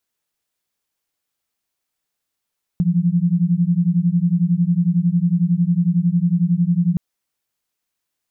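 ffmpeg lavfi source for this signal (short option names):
-f lavfi -i "aevalsrc='0.141*(sin(2*PI*168*t)+sin(2*PI*179*t))':d=4.17:s=44100"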